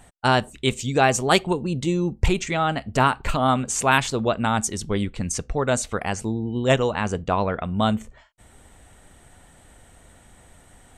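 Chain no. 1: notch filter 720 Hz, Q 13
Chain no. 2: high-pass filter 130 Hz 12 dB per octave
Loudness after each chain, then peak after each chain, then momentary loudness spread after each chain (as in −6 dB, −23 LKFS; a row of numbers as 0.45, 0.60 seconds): −23.0, −23.0 LKFS; −1.5, −2.0 dBFS; 7, 8 LU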